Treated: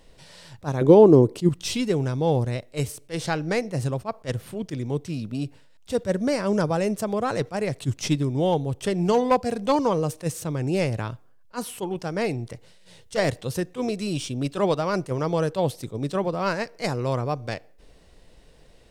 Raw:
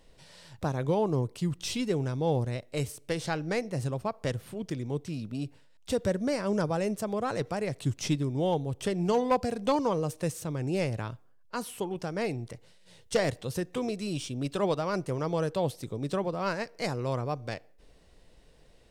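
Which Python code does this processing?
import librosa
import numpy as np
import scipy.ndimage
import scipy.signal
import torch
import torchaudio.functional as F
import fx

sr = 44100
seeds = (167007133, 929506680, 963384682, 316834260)

y = fx.peak_eq(x, sr, hz=340.0, db=13.5, octaves=1.5, at=(0.81, 1.49))
y = fx.attack_slew(y, sr, db_per_s=380.0)
y = y * librosa.db_to_amplitude(5.5)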